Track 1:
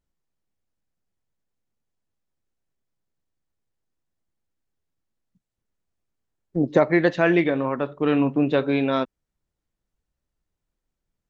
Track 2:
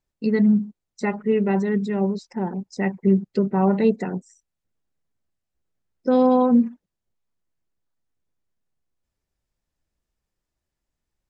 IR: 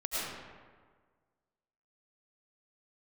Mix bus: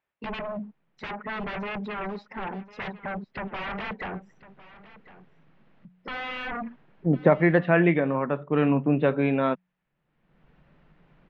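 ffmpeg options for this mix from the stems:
-filter_complex "[0:a]lowshelf=frequency=120:width_type=q:width=3:gain=-8,bandreject=frequency=91.01:width_type=h:width=4,bandreject=frequency=182.02:width_type=h:width=4,acompressor=mode=upward:threshold=-33dB:ratio=2.5,adelay=500,volume=-1dB,afade=type=in:start_time=3.96:duration=0.49:silence=0.223872[link_01];[1:a]highpass=frequency=1000:poles=1,aeval=exprs='0.168*sin(PI/2*7.94*val(0)/0.168)':channel_layout=same,volume=-13dB,asplit=2[link_02][link_03];[link_03]volume=-18dB,aecho=0:1:1053:1[link_04];[link_01][link_02][link_04]amix=inputs=3:normalize=0,lowpass=frequency=2700:width=0.5412,lowpass=frequency=2700:width=1.3066,equalizer=frequency=310:width_type=o:width=0.84:gain=-3.5"

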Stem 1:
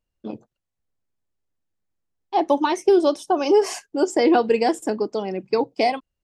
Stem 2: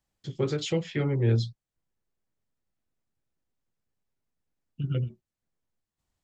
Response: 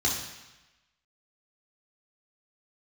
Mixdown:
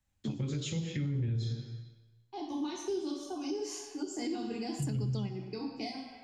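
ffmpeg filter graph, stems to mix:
-filter_complex "[0:a]equalizer=frequency=540:width_type=o:width=0.87:gain=-8,volume=-0.5dB,asplit=2[link_01][link_02];[link_02]volume=-20.5dB[link_03];[1:a]lowshelf=frequency=100:gain=6.5,volume=-1.5dB,asplit=3[link_04][link_05][link_06];[link_05]volume=-12.5dB[link_07];[link_06]apad=whole_len=275067[link_08];[link_01][link_08]sidechaingate=range=-33dB:threshold=-55dB:ratio=16:detection=peak[link_09];[2:a]atrim=start_sample=2205[link_10];[link_03][link_07]amix=inputs=2:normalize=0[link_11];[link_11][link_10]afir=irnorm=-1:irlink=0[link_12];[link_09][link_04][link_12]amix=inputs=3:normalize=0,acrossover=split=340|3000[link_13][link_14][link_15];[link_14]acompressor=threshold=-47dB:ratio=3[link_16];[link_13][link_16][link_15]amix=inputs=3:normalize=0,alimiter=level_in=2.5dB:limit=-24dB:level=0:latency=1:release=172,volume=-2.5dB"

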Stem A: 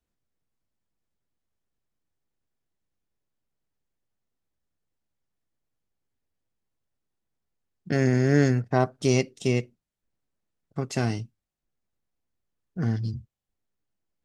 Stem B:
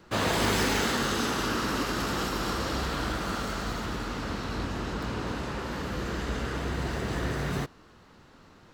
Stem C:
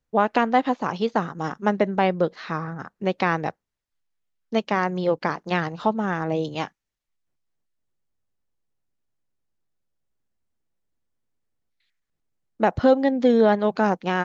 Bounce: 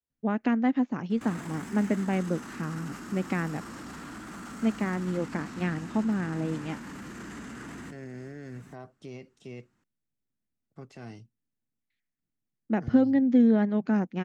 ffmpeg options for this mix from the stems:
ffmpeg -i stem1.wav -i stem2.wav -i stem3.wav -filter_complex "[0:a]acrossover=split=3500[link_01][link_02];[link_02]acompressor=threshold=-48dB:ratio=4:attack=1:release=60[link_03];[link_01][link_03]amix=inputs=2:normalize=0,highpass=61,volume=-13.5dB,asplit=2[link_04][link_05];[1:a]equalizer=frequency=250:width_type=o:width=1:gain=9,equalizer=frequency=500:width_type=o:width=1:gain=-10,equalizer=frequency=2000:width_type=o:width=1:gain=4,equalizer=frequency=4000:width_type=o:width=1:gain=-7,equalizer=frequency=8000:width_type=o:width=1:gain=10,adelay=1100,volume=-3dB[link_06];[2:a]equalizer=frequency=125:width_type=o:width=1:gain=5,equalizer=frequency=250:width_type=o:width=1:gain=11,equalizer=frequency=500:width_type=o:width=1:gain=-4,equalizer=frequency=1000:width_type=o:width=1:gain=-6,equalizer=frequency=2000:width_type=o:width=1:gain=4,equalizer=frequency=4000:width_type=o:width=1:gain=-8,adelay=100,volume=-9.5dB[link_07];[link_05]apad=whole_len=433820[link_08];[link_06][link_08]sidechaincompress=threshold=-56dB:ratio=3:attack=7.1:release=1460[link_09];[link_04][link_09]amix=inputs=2:normalize=0,acrossover=split=120|1700[link_10][link_11][link_12];[link_10]acompressor=threshold=-55dB:ratio=4[link_13];[link_11]acompressor=threshold=-32dB:ratio=4[link_14];[link_12]acompressor=threshold=-45dB:ratio=4[link_15];[link_13][link_14][link_15]amix=inputs=3:normalize=0,alimiter=level_in=10dB:limit=-24dB:level=0:latency=1:release=19,volume=-10dB,volume=0dB[link_16];[link_07][link_16]amix=inputs=2:normalize=0" out.wav

